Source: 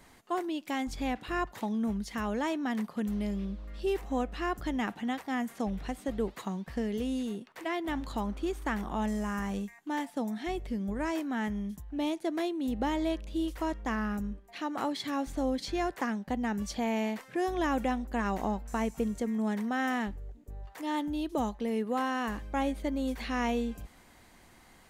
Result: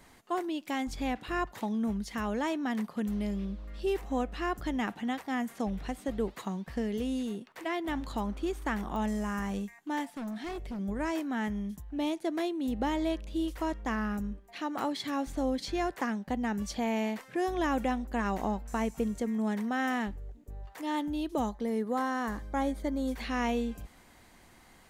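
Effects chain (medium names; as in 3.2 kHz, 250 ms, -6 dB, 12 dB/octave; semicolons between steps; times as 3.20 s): 10.10–10.79 s: hard clipper -35 dBFS, distortion -24 dB; 21.46–23.12 s: peaking EQ 2.7 kHz -13 dB 0.31 oct; clicks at 8.96/14.79 s, -28 dBFS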